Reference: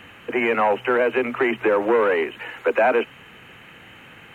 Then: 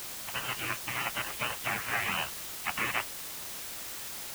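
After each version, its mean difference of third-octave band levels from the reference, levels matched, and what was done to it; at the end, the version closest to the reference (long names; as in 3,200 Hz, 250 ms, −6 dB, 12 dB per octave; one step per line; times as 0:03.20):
17.5 dB: gate on every frequency bin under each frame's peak −25 dB weak
in parallel at −4.5 dB: bit-depth reduction 6 bits, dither triangular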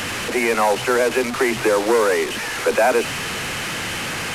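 13.0 dB: linear delta modulator 64 kbit/s, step −21.5 dBFS
hum removal 60.15 Hz, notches 3
level +1.5 dB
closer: second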